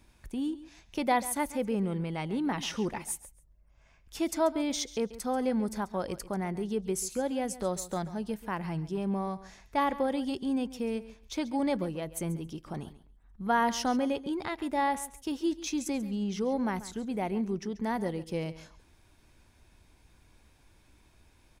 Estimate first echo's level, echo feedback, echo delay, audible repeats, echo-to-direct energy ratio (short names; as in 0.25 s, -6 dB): -16.0 dB, 16%, 0.137 s, 2, -16.0 dB